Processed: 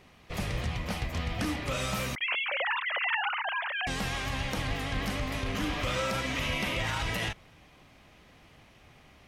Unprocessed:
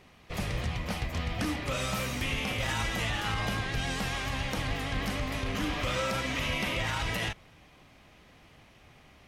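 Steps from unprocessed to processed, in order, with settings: 2.15–3.87 sine-wave speech

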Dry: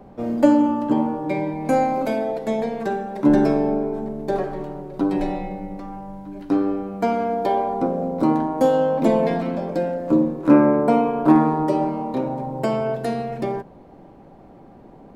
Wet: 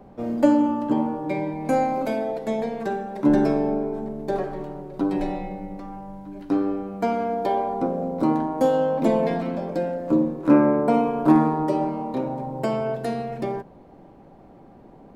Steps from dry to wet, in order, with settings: 10.94–11.48 tone controls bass +2 dB, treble +4 dB; gain -2.5 dB

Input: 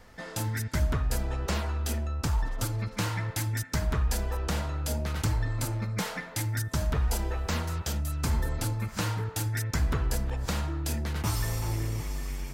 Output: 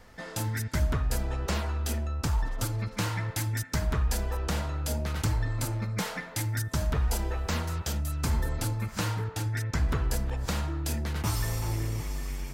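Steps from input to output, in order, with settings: 9.28–9.89 high shelf 7600 Hz -10.5 dB

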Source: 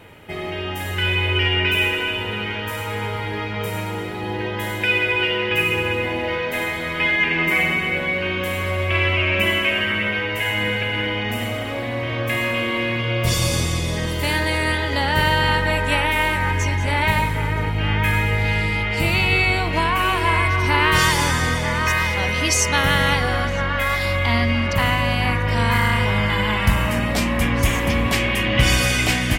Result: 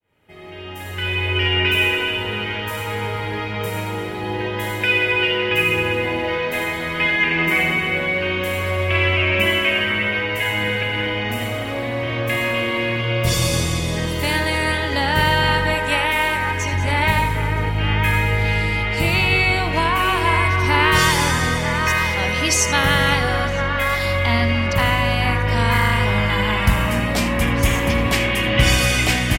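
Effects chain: opening faded in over 1.68 s; 15.74–16.73 low shelf 200 Hz -7 dB; on a send: echo 79 ms -13.5 dB; on the sum: gain +1 dB

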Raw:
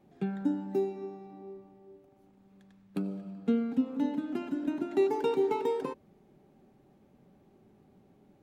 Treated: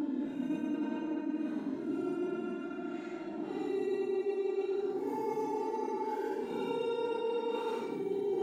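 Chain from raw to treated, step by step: low-pass opened by the level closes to 2700 Hz, open at -27.5 dBFS; darkening echo 0.599 s, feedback 44%, level -10 dB; Paulstretch 11×, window 0.05 s, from 4.64; reverse; compressor 6:1, threshold -31 dBFS, peak gain reduction 12 dB; reverse

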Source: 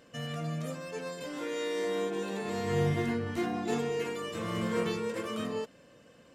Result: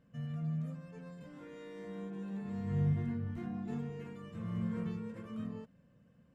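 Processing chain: EQ curve 200 Hz 0 dB, 330 Hz -16 dB, 1600 Hz -15 dB, 4500 Hz -24 dB

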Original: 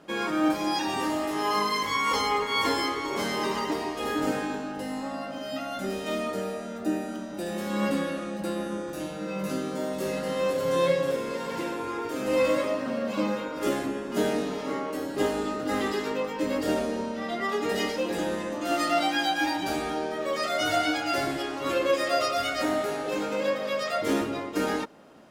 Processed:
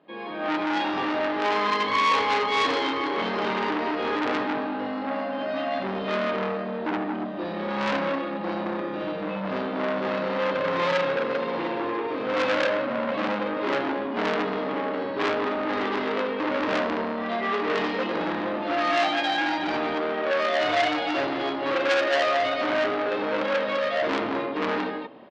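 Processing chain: HPF 260 Hz 6 dB/oct; high shelf 2700 Hz -7 dB; notch 1400 Hz, Q 6.5; tapped delay 47/56/63/162/217 ms -4/-8.5/-6.5/-19/-6.5 dB; AGC gain up to 11.5 dB; steep low-pass 4200 Hz 48 dB/oct; core saturation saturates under 2300 Hz; gain -5.5 dB

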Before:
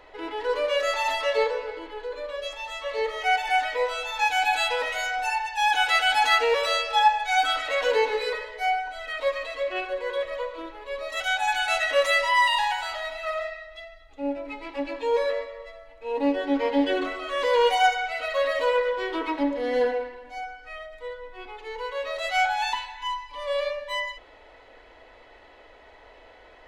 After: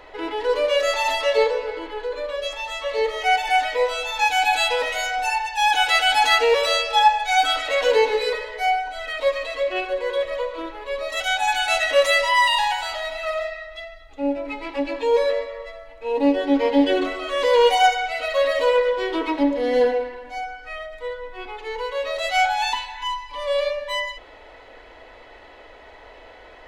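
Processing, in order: dynamic EQ 1400 Hz, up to -5 dB, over -38 dBFS, Q 1; gain +6 dB

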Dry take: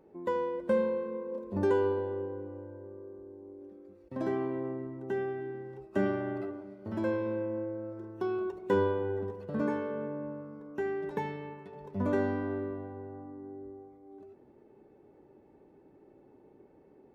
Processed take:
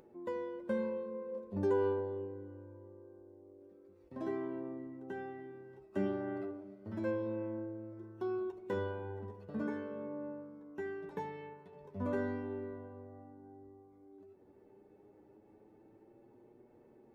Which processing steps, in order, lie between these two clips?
flange 0.12 Hz, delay 8.2 ms, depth 4.3 ms, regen +29%; upward compressor, threshold -51 dBFS; gain -3.5 dB

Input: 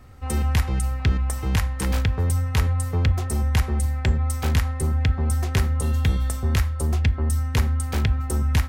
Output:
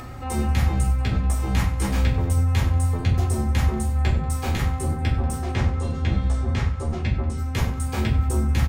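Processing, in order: HPF 63 Hz; soft clip -16 dBFS, distortion -18 dB; 5.38–7.38 air absorption 87 m; reverb RT60 0.40 s, pre-delay 6 ms, DRR -5 dB; upward compressor, threshold -21 dBFS; high shelf 11000 Hz -3 dB; feedback echo 94 ms, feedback 48%, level -16.5 dB; gain -5.5 dB

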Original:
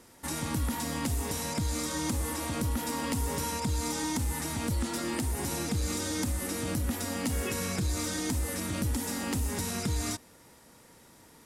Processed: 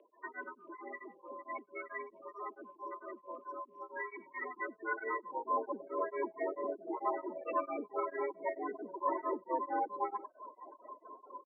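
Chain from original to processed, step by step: 2.03–3.92 sample sorter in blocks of 8 samples; air absorption 260 m; in parallel at -4 dB: hard clip -37.5 dBFS, distortion -6 dB; on the sum: loudest bins only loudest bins 16; on a send: echo 97 ms -11.5 dB; on the sum: limiter -29.5 dBFS, peak gain reduction 9.5 dB; reverb removal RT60 0.54 s; band-pass sweep 2700 Hz -> 900 Hz, 4.08–5.77; mistuned SSB +100 Hz 150–3400 Hz; beating tremolo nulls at 4.5 Hz; gain +18 dB

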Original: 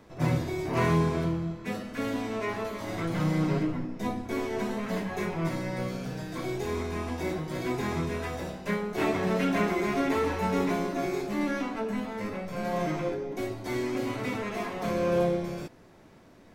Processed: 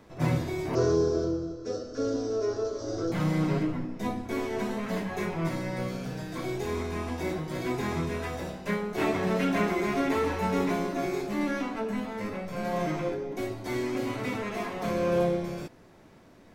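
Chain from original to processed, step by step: 0.75–3.12 EQ curve 120 Hz 0 dB, 190 Hz -18 dB, 280 Hz +2 dB, 480 Hz +8 dB, 940 Hz -13 dB, 1400 Hz -2 dB, 2100 Hz -23 dB, 3700 Hz -7 dB, 5600 Hz +10 dB, 11000 Hz -27 dB

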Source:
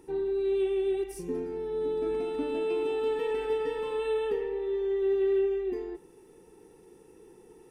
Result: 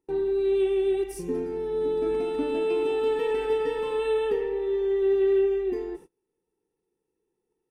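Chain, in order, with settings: gate -47 dBFS, range -30 dB; gain +4 dB

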